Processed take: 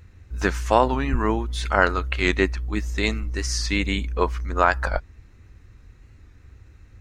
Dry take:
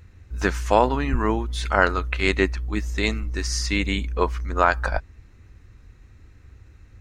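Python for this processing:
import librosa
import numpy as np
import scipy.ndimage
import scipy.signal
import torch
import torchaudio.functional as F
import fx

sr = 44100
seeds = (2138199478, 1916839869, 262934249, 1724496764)

y = fx.record_warp(x, sr, rpm=45.0, depth_cents=100.0)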